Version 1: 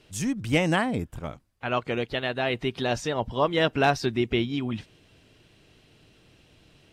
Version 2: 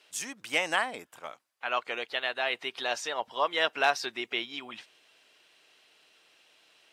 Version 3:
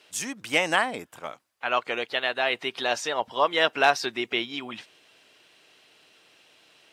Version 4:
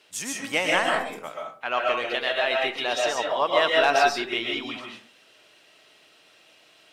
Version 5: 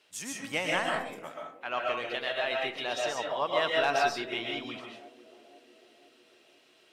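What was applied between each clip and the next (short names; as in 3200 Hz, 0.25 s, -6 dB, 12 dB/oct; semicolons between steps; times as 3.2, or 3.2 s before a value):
HPF 780 Hz 12 dB/oct
low shelf 310 Hz +9 dB; gain +4 dB
in parallel at -11 dB: soft clip -18 dBFS, distortion -10 dB; on the sum: reverb RT60 0.45 s, pre-delay 90 ms, DRR -1 dB; gain -3.5 dB
narrowing echo 0.499 s, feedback 63%, band-pass 370 Hz, level -16 dB; dynamic EQ 140 Hz, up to +7 dB, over -50 dBFS, Q 1.3; gain -7 dB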